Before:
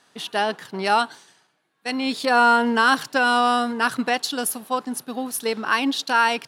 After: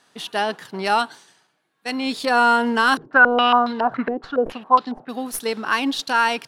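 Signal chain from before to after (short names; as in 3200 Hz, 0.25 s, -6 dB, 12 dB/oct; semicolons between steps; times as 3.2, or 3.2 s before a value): tracing distortion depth 0.021 ms; 2.97–5.09 stepped low-pass 7.2 Hz 370–3900 Hz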